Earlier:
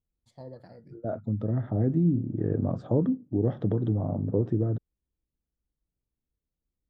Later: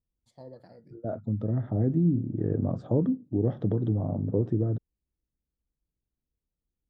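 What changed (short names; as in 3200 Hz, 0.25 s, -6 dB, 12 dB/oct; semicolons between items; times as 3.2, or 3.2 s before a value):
first voice: add low shelf 140 Hz -9 dB; master: add bell 1800 Hz -3.5 dB 2.5 oct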